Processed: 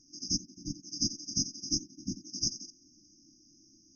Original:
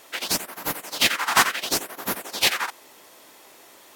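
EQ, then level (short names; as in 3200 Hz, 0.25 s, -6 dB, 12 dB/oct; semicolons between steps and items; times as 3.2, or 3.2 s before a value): brick-wall FIR band-stop 340–4800 Hz; brick-wall FIR low-pass 6600 Hz; low shelf 60 Hz +8 dB; -1.5 dB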